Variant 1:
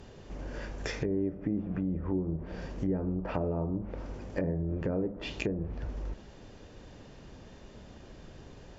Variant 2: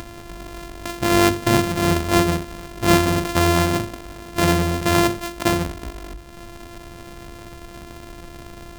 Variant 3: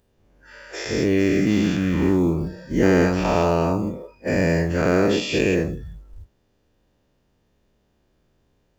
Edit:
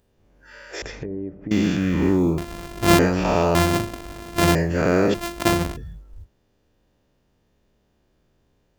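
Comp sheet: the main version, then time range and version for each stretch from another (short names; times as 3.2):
3
0.82–1.51 from 1
2.38–2.99 from 2
3.55–4.55 from 2
5.14–5.77 from 2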